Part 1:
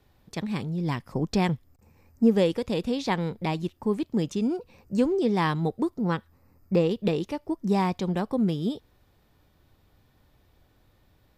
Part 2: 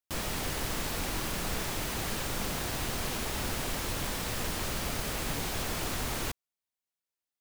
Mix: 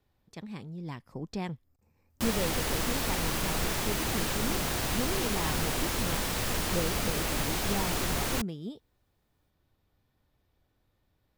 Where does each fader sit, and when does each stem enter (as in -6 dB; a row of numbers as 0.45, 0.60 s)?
-11.0, +3.0 dB; 0.00, 2.10 s